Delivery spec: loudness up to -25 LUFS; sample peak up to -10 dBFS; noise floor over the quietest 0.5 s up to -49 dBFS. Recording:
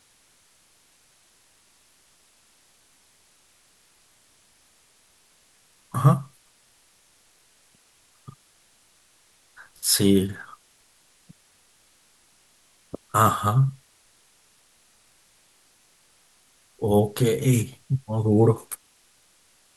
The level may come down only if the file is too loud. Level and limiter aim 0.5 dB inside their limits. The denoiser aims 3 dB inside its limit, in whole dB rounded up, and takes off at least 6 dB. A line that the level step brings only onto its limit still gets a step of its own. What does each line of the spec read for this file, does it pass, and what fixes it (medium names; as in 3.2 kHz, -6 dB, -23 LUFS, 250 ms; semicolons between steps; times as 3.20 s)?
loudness -22.5 LUFS: fail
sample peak -5.5 dBFS: fail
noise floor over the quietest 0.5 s -61 dBFS: pass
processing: trim -3 dB; peak limiter -10.5 dBFS